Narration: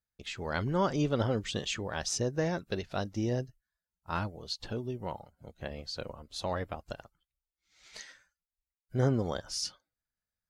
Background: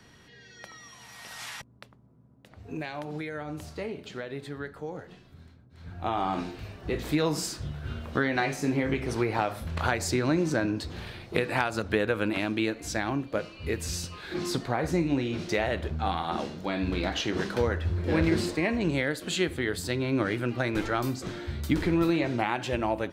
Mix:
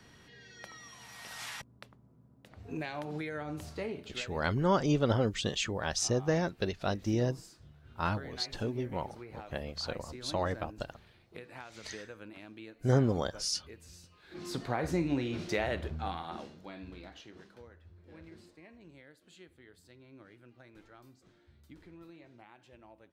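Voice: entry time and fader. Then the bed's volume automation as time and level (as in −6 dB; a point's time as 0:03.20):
3.90 s, +1.5 dB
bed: 0:03.99 −2.5 dB
0:04.57 −20.5 dB
0:14.15 −20.5 dB
0:14.64 −4.5 dB
0:15.79 −4.5 dB
0:17.71 −28 dB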